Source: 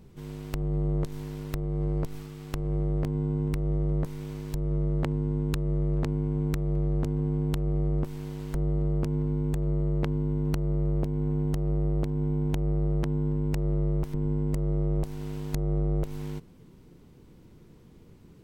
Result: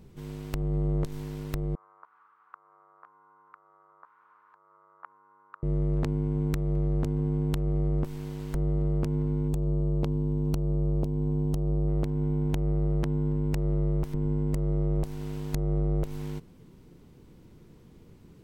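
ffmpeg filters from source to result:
-filter_complex "[0:a]asettb=1/sr,asplit=3[a][b][c];[a]atrim=end=1.754[d];[b]atrim=start=1.75:end=5.63,asetpts=PTS-STARTPTS,afade=t=in:d=0.004:c=qsin,afade=t=out:st=3.876:d=0.004:c=qsin,asuperpass=centerf=1200:order=4:qfactor=2.7[e];[c]atrim=start=5.626[f];[d][e]acrossfade=d=0.004:c1=hsin:c2=qsin[g];[g][f]acrossfade=d=0.004:c1=qsin:c2=hsin,asettb=1/sr,asplit=3[h][i][j];[h]atrim=end=9.484[k];[i]atrim=start=9.48:end=11.88,asetpts=PTS-STARTPTS,afade=t=in:d=0.004:c=qsin,afade=t=out:st=2.396:d=0.004:c=qsin,equalizer=f=1.8k:w=1.7:g=-12.5[l];[j]atrim=start=11.876[m];[k][l]acrossfade=d=0.004:c1=hsin:c2=qsin[n];[n][m]acrossfade=d=0.004:c1=qsin:c2=hsin"

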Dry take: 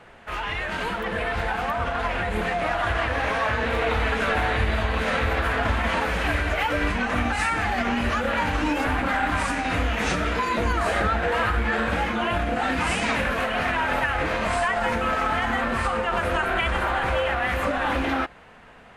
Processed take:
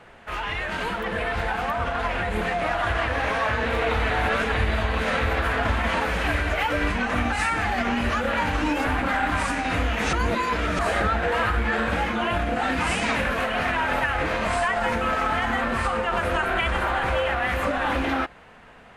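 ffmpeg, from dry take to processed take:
-filter_complex "[0:a]asplit=5[a][b][c][d][e];[a]atrim=end=4.102[f];[b]atrim=start=4.098:end=4.542,asetpts=PTS-STARTPTS,areverse[g];[c]atrim=start=4.538:end=10.132[h];[d]atrim=start=10.128:end=10.792,asetpts=PTS-STARTPTS,areverse[i];[e]atrim=start=10.788[j];[f][g]acrossfade=d=0.004:c1=hsin:c2=hsin[k];[k][h]acrossfade=d=0.004:c1=hsin:c2=hsin[l];[l][i]acrossfade=d=0.004:c1=hsin:c2=hsin[m];[m][j]acrossfade=d=0.004:c1=hsin:c2=hsin"

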